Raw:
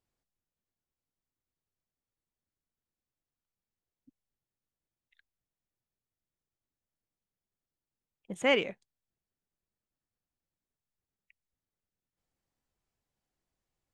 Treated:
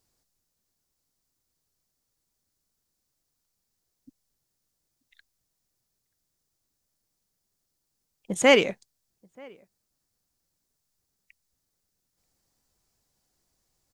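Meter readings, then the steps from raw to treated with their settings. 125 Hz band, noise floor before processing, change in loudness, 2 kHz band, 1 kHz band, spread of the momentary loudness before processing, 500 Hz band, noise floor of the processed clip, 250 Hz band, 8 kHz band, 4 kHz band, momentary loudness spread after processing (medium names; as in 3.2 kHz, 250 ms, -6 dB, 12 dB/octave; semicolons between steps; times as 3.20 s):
+9.0 dB, under -85 dBFS, +8.0 dB, +7.5 dB, +8.5 dB, 16 LU, +9.0 dB, -80 dBFS, +9.0 dB, +17.0 dB, +8.0 dB, 15 LU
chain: resonant high shelf 3.8 kHz +6.5 dB, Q 1.5; echo from a far wall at 160 m, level -27 dB; trim +9 dB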